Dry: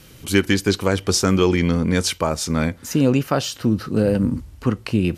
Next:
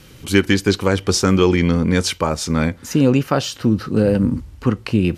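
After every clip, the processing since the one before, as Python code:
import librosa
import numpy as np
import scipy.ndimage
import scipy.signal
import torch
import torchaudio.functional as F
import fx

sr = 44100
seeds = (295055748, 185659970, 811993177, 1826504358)

y = fx.high_shelf(x, sr, hz=8300.0, db=-7.0)
y = fx.notch(y, sr, hz=650.0, q=14.0)
y = y * 10.0 ** (2.5 / 20.0)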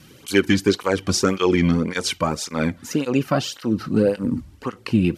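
y = fx.flanger_cancel(x, sr, hz=1.8, depth_ms=2.5)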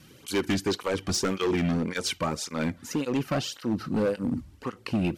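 y = np.clip(x, -10.0 ** (-16.0 / 20.0), 10.0 ** (-16.0 / 20.0))
y = y * 10.0 ** (-5.0 / 20.0)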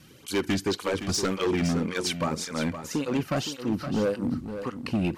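y = x + 10.0 ** (-10.0 / 20.0) * np.pad(x, (int(516 * sr / 1000.0), 0))[:len(x)]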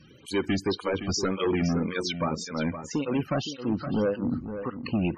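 y = fx.spec_topn(x, sr, count=64)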